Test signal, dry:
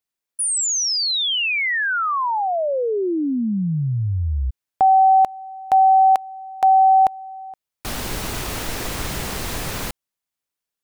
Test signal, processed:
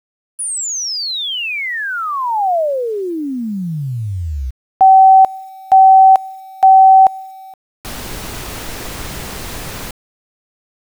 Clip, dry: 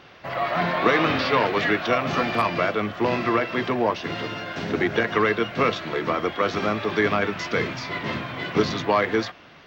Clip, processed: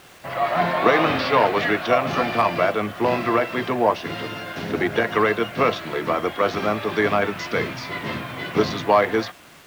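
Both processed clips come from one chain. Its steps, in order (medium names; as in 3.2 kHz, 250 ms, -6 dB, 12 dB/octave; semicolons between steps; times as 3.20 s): dynamic bell 720 Hz, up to +7 dB, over -28 dBFS, Q 1.3; word length cut 8-bit, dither none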